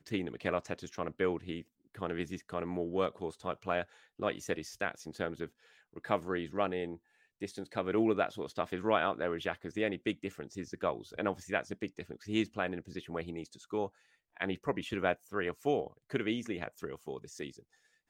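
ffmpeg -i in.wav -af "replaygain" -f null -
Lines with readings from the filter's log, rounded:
track_gain = +15.0 dB
track_peak = 0.147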